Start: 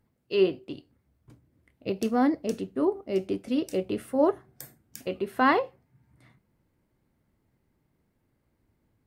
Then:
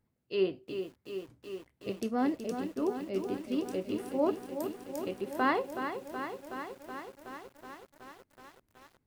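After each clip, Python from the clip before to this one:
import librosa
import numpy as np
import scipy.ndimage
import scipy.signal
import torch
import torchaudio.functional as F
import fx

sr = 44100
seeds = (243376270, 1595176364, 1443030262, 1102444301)

y = fx.echo_crushed(x, sr, ms=373, feedback_pct=80, bits=8, wet_db=-8)
y = y * 10.0 ** (-6.5 / 20.0)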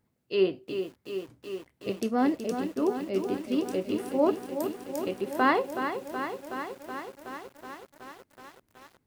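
y = fx.low_shelf(x, sr, hz=66.0, db=-9.0)
y = y * 10.0 ** (5.0 / 20.0)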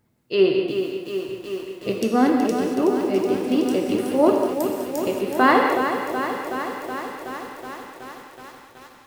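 y = fx.rev_gated(x, sr, seeds[0], gate_ms=260, shape='flat', drr_db=2.0)
y = y * 10.0 ** (6.5 / 20.0)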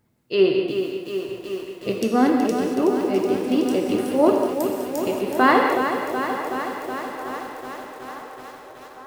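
y = fx.echo_wet_bandpass(x, sr, ms=892, feedback_pct=66, hz=770.0, wet_db=-15.0)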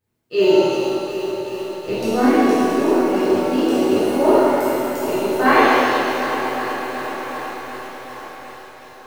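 y = fx.law_mismatch(x, sr, coded='A')
y = fx.doubler(y, sr, ms=24.0, db=-11.0)
y = fx.rev_shimmer(y, sr, seeds[1], rt60_s=1.3, semitones=7, shimmer_db=-8, drr_db=-10.5)
y = y * 10.0 ** (-7.5 / 20.0)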